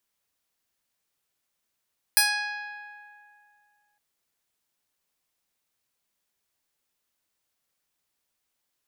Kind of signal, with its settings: plucked string G#5, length 1.81 s, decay 2.43 s, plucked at 0.22, bright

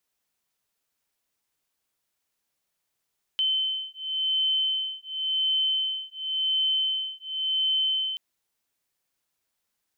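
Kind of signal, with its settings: beating tones 3.07 kHz, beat 0.92 Hz, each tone -27 dBFS 4.78 s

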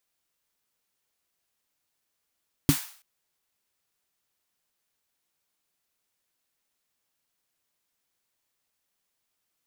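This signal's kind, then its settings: snare drum length 0.33 s, tones 150 Hz, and 280 Hz, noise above 810 Hz, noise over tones -11 dB, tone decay 0.10 s, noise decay 0.49 s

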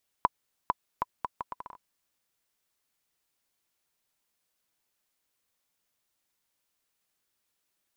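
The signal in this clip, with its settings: bouncing ball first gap 0.45 s, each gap 0.71, 995 Hz, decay 29 ms -9 dBFS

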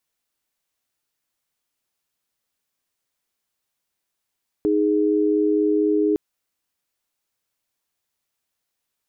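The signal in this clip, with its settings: chord D#4/G#4 sine, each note -19 dBFS 1.51 s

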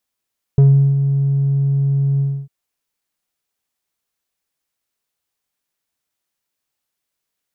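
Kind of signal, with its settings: synth note square C#3 12 dB/octave, low-pass 160 Hz, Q 1.1, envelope 1 oct, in 0.15 s, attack 1.9 ms, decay 0.37 s, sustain -8 dB, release 0.28 s, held 1.62 s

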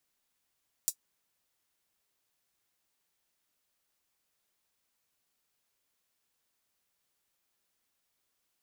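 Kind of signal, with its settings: closed hi-hat, high-pass 6.5 kHz, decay 0.08 s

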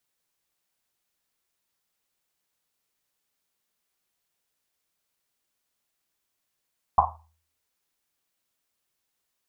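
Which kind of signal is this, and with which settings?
Risset drum, pitch 80 Hz, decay 0.55 s, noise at 910 Hz, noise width 410 Hz, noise 80%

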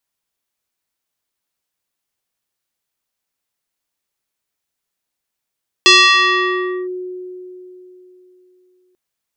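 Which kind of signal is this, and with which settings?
FM tone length 3.09 s, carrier 365 Hz, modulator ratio 4.17, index 3.2, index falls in 1.02 s linear, decay 3.51 s, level -4 dB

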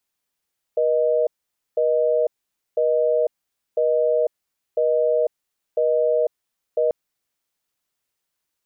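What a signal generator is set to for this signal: call progress tone busy tone, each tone -19 dBFS 6.14 s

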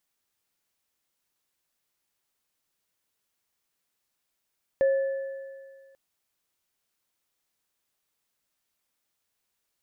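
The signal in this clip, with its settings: sine partials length 1.14 s, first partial 542 Hz, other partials 1.74 kHz, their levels -18 dB, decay 1.87 s, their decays 2.21 s, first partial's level -17.5 dB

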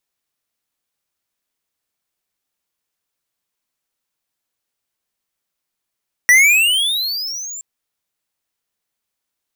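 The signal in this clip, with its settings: gliding synth tone square, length 1.32 s, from 1.92 kHz, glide +23.5 st, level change -21 dB, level -8 dB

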